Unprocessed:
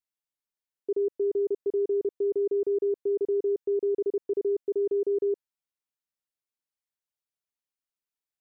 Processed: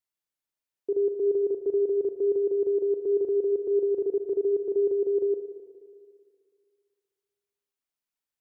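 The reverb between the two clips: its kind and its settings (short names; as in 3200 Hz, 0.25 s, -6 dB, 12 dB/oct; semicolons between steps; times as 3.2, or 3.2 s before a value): spring tank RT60 2.1 s, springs 37/59 ms, chirp 65 ms, DRR 7 dB; gain +1 dB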